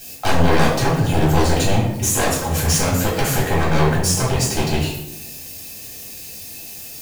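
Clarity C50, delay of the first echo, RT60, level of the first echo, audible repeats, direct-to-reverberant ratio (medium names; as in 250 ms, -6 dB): 3.5 dB, no echo, 0.85 s, no echo, no echo, -5.5 dB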